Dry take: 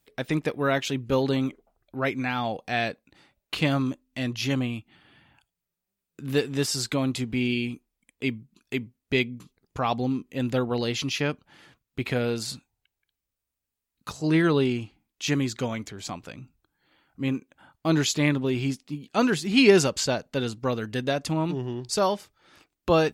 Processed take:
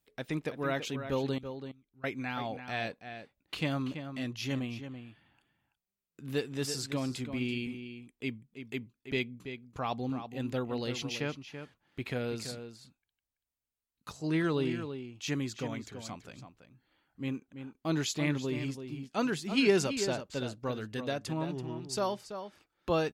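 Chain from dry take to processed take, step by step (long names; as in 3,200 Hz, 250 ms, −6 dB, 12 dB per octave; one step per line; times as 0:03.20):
0:01.38–0:02.04: guitar amp tone stack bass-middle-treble 6-0-2
slap from a distant wall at 57 metres, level −9 dB
level −8.5 dB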